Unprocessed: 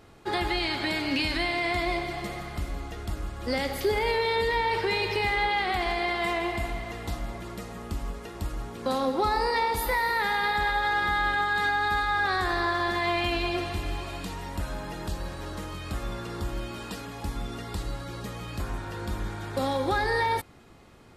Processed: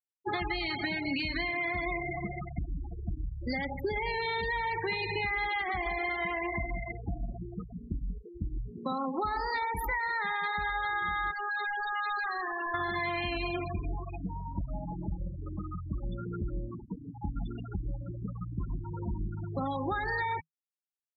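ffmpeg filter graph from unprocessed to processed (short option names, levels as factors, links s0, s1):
-filter_complex "[0:a]asettb=1/sr,asplit=3[s0][s1][s2];[s0]atrim=end=11.314[s3];[s1]atrim=start=11.31:end=12.74,asetpts=PTS-STARTPTS,afade=t=in:d=0.004:c=qsin,afade=t=out:st=1.426:d=0.004:c=qsin,highpass=250,highshelf=f=3500:g=5,asoftclip=type=hard:threshold=0.0282[s4];[s2]atrim=start=12.736[s5];[s3][s4]acrossfade=d=0.004:c1=hsin:c2=qsin[s6];[s6][s5]acrossfade=d=0.004:c1=qsin:c2=hsin,afftfilt=real='re*gte(hypot(re,im),0.0562)':imag='im*gte(hypot(re,im),0.0562)':win_size=1024:overlap=0.75,equalizer=f=160:t=o:w=0.33:g=10,equalizer=f=500:t=o:w=0.33:g=-9,equalizer=f=1250:t=o:w=0.33:g=5,equalizer=f=2000:t=o:w=0.33:g=4,acompressor=threshold=0.0355:ratio=6"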